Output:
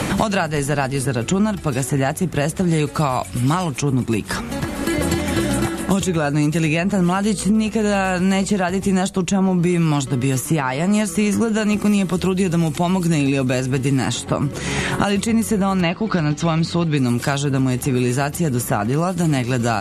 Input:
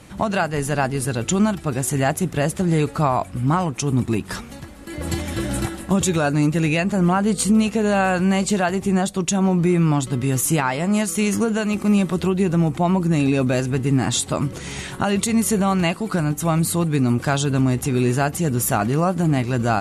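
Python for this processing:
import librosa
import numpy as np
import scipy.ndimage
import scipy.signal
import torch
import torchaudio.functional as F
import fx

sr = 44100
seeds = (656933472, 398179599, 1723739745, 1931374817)

y = fx.lowpass(x, sr, hz=5000.0, slope=24, at=(15.81, 16.97))
y = fx.band_squash(y, sr, depth_pct=100)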